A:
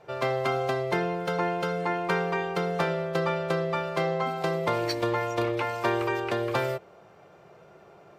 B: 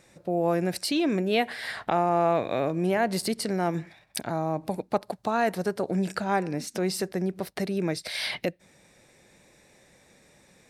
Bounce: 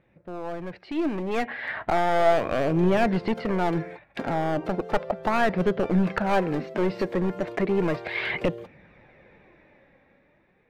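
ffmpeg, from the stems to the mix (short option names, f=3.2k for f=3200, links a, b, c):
-filter_complex "[0:a]equalizer=f=470:w=1.5:g=8.5,acompressor=threshold=-27dB:ratio=6,adelay=2100,volume=-16dB[a];[1:a]lowpass=f=2.5k:w=0.5412,lowpass=f=2.5k:w=1.3066,aeval=exprs='clip(val(0),-1,0.0531)':c=same,volume=-1.5dB,asplit=2[b][c];[c]apad=whole_len=453402[d];[a][d]sidechaingate=range=-33dB:threshold=-49dB:ratio=16:detection=peak[e];[e][b]amix=inputs=2:normalize=0,dynaudnorm=f=310:g=9:m=12dB,flanger=delay=0.3:depth=3.4:regen=59:speed=0.35:shape=sinusoidal"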